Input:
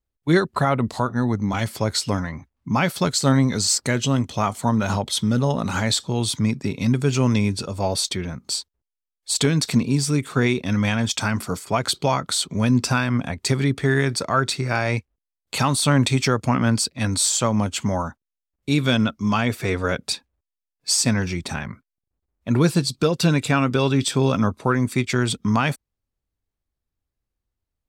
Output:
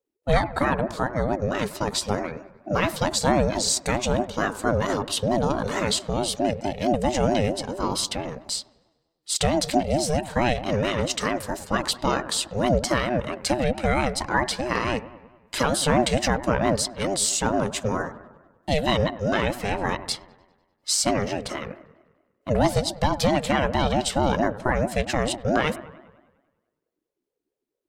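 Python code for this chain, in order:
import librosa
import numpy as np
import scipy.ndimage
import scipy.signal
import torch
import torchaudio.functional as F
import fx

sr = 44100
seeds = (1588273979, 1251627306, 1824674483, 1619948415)

y = fx.echo_wet_lowpass(x, sr, ms=99, feedback_pct=58, hz=1600.0, wet_db=-15)
y = fx.ring_lfo(y, sr, carrier_hz=400.0, swing_pct=25, hz=4.5)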